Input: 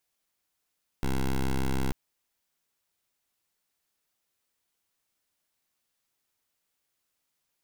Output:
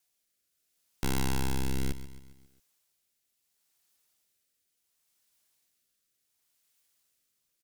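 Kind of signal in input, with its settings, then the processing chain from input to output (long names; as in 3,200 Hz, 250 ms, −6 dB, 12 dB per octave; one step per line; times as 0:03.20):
pulse wave 66.2 Hz, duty 11% −26.5 dBFS 0.89 s
high-shelf EQ 3,100 Hz +9 dB
rotating-speaker cabinet horn 0.7 Hz
repeating echo 135 ms, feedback 51%, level −13.5 dB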